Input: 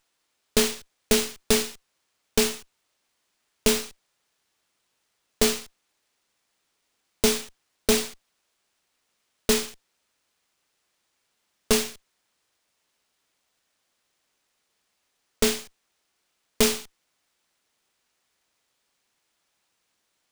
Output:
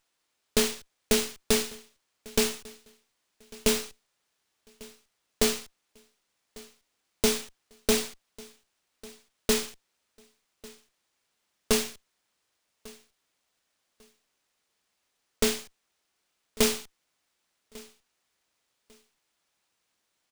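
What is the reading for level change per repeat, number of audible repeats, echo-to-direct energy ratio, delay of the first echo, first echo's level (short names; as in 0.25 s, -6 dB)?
-12.0 dB, 2, -22.0 dB, 1.147 s, -22.5 dB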